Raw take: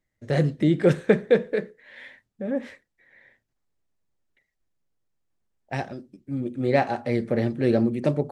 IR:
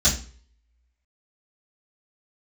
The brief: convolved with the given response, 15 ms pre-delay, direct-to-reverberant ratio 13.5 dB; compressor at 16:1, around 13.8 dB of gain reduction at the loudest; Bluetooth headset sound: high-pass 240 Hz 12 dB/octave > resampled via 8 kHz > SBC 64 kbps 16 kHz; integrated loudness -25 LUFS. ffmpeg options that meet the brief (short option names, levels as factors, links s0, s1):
-filter_complex "[0:a]acompressor=threshold=0.0501:ratio=16,asplit=2[s0][s1];[1:a]atrim=start_sample=2205,adelay=15[s2];[s1][s2]afir=irnorm=-1:irlink=0,volume=0.0398[s3];[s0][s3]amix=inputs=2:normalize=0,highpass=240,aresample=8000,aresample=44100,volume=2.99" -ar 16000 -c:a sbc -b:a 64k